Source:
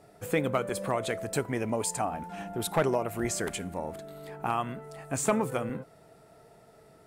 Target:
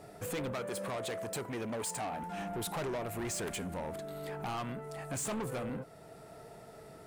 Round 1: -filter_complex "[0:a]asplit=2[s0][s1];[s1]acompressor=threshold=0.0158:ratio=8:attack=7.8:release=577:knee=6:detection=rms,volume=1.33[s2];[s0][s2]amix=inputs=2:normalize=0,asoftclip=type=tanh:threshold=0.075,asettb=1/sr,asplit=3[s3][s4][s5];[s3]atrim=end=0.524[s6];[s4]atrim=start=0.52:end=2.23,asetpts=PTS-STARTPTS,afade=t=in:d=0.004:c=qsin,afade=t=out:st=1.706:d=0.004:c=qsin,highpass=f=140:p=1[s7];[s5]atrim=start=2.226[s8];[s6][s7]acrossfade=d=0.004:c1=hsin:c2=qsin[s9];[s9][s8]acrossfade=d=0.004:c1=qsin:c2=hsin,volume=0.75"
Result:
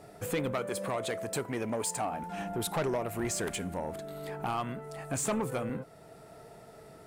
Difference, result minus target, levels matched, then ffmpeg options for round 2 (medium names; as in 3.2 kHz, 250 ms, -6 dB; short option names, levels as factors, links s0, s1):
saturation: distortion -6 dB
-filter_complex "[0:a]asplit=2[s0][s1];[s1]acompressor=threshold=0.0158:ratio=8:attack=7.8:release=577:knee=6:detection=rms,volume=1.33[s2];[s0][s2]amix=inputs=2:normalize=0,asoftclip=type=tanh:threshold=0.0282,asettb=1/sr,asplit=3[s3][s4][s5];[s3]atrim=end=0.524[s6];[s4]atrim=start=0.52:end=2.23,asetpts=PTS-STARTPTS,afade=t=in:d=0.004:c=qsin,afade=t=out:st=1.706:d=0.004:c=qsin,highpass=f=140:p=1[s7];[s5]atrim=start=2.226[s8];[s6][s7]acrossfade=d=0.004:c1=hsin:c2=qsin[s9];[s9][s8]acrossfade=d=0.004:c1=qsin:c2=hsin,volume=0.75"